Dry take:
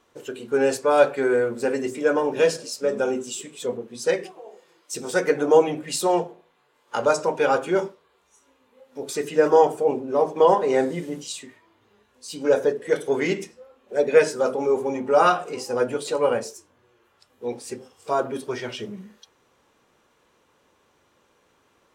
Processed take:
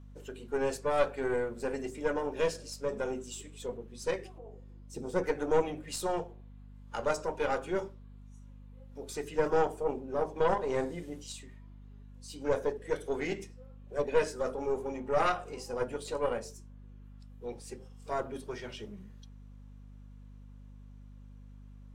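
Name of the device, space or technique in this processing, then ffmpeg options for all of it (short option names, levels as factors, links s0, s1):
valve amplifier with mains hum: -filter_complex "[0:a]asettb=1/sr,asplit=3[s0][s1][s2];[s0]atrim=end=4.384[s3];[s1]atrim=start=4.38:end=5.24,asetpts=PTS-STARTPTS,afade=t=in:d=0.004:c=qsin,afade=t=out:st=0.856:d=0.004:c=qsin,tiltshelf=f=730:g=8.5[s4];[s2]atrim=start=5.236[s5];[s3][s4]acrossfade=d=0.004:c1=hsin:c2=qsin[s6];[s6][s5]acrossfade=d=0.004:c1=qsin:c2=hsin,aeval=exprs='(tanh(3.55*val(0)+0.7)-tanh(0.7))/3.55':c=same,aeval=exprs='val(0)+0.00794*(sin(2*PI*50*n/s)+sin(2*PI*2*50*n/s)/2+sin(2*PI*3*50*n/s)/3+sin(2*PI*4*50*n/s)/4+sin(2*PI*5*50*n/s)/5)':c=same,volume=0.447"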